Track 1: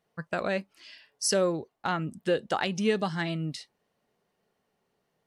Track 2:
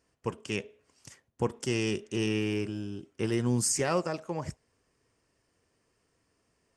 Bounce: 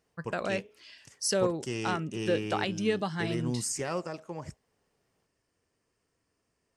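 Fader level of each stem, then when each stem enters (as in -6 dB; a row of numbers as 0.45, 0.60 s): -2.5, -5.0 dB; 0.00, 0.00 s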